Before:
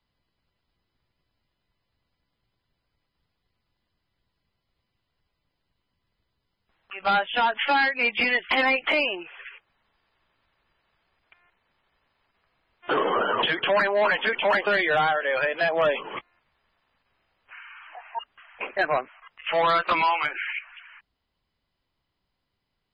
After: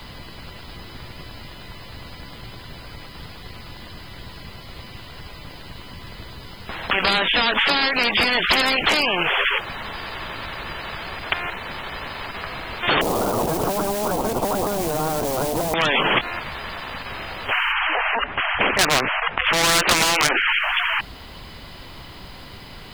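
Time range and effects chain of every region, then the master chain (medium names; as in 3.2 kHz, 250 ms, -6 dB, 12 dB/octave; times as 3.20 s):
13.01–15.74 s: jump at every zero crossing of -30.5 dBFS + elliptic low-pass 710 Hz, stop band 60 dB + companded quantiser 8-bit
17.72–20.48 s: low-pass 2.5 kHz 24 dB/octave + hard clipper -19 dBFS
whole clip: compression, threshold -24 dBFS; loudness maximiser +28 dB; spectrum-flattening compressor 4:1; trim -1 dB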